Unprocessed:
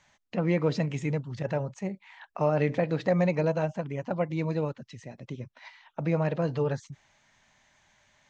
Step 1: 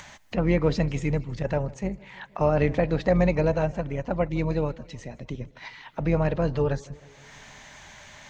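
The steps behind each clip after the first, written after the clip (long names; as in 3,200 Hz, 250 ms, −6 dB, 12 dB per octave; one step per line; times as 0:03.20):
sub-octave generator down 2 octaves, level −6 dB
upward compression, threshold −36 dBFS
feedback echo with a swinging delay time 157 ms, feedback 64%, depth 100 cents, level −23 dB
level +3 dB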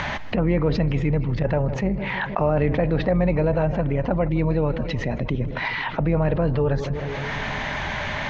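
high-frequency loss of the air 290 metres
envelope flattener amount 70%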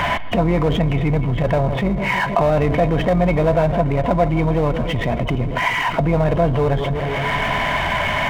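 hearing-aid frequency compression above 2,900 Hz 4 to 1
power curve on the samples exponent 0.7
hollow resonant body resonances 690/1,000/2,200/3,700 Hz, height 12 dB, ringing for 70 ms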